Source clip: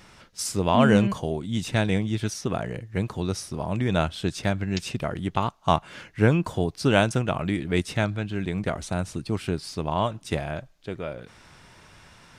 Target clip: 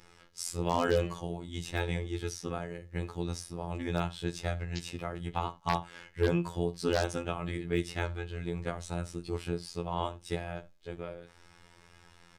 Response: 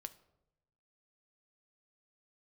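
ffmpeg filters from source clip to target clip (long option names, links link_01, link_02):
-filter_complex "[0:a]aecho=1:1:2.4:0.34[link_01];[1:a]atrim=start_sample=2205,atrim=end_sample=4410[link_02];[link_01][link_02]afir=irnorm=-1:irlink=0,afftfilt=real='hypot(re,im)*cos(PI*b)':imag='0':win_size=2048:overlap=0.75,aeval=exprs='0.2*(abs(mod(val(0)/0.2+3,4)-2)-1)':channel_layout=same"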